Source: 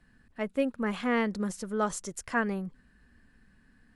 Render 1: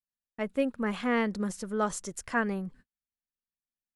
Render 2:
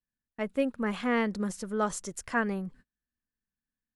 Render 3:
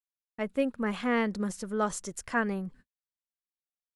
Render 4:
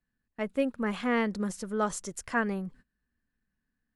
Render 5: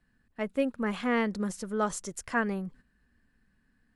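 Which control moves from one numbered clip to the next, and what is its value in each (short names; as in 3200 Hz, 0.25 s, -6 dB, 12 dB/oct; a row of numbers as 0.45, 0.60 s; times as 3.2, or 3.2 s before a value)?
gate, range: -46, -33, -59, -21, -8 dB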